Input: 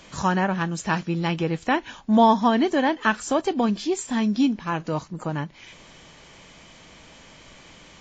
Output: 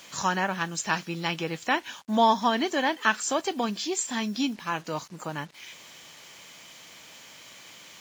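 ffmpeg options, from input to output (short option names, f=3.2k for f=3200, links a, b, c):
-af "highpass=100,highshelf=f=2.7k:g=7,acrusher=bits=7:mix=0:aa=0.5,lowshelf=f=460:g=-8,volume=-2dB"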